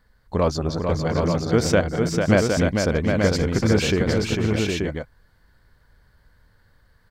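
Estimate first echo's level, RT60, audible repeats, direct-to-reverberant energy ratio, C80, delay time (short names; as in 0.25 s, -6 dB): -19.5 dB, none, 5, none, none, 0.273 s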